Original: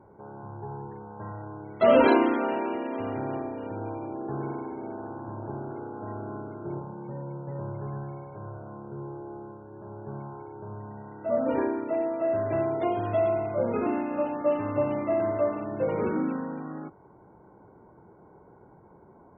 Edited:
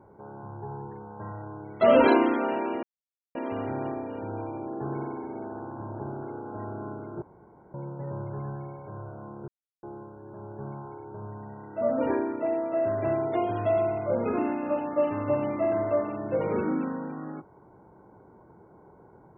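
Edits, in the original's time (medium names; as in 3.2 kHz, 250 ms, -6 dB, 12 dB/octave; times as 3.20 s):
2.83 s: insert silence 0.52 s
6.70–7.22 s: room tone
8.96–9.31 s: mute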